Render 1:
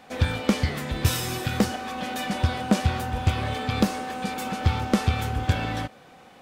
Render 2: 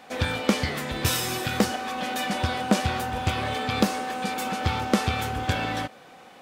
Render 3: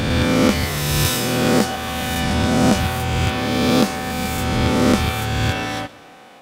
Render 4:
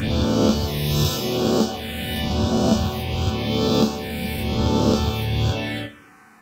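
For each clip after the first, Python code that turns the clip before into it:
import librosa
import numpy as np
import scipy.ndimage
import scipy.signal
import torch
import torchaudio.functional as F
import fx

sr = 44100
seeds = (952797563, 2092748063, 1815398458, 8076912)

y1 = fx.low_shelf(x, sr, hz=150.0, db=-11.0)
y1 = F.gain(torch.from_numpy(y1), 2.5).numpy()
y2 = fx.spec_swells(y1, sr, rise_s=2.27)
y2 = fx.echo_feedback(y2, sr, ms=123, feedback_pct=54, wet_db=-21.0)
y2 = F.gain(torch.from_numpy(y2), 1.5).numpy()
y3 = fx.env_phaser(y2, sr, low_hz=540.0, high_hz=2000.0, full_db=-15.0)
y3 = fx.resonator_bank(y3, sr, root=38, chord='major', decay_s=0.24)
y3 = F.gain(torch.from_numpy(y3), 8.0).numpy()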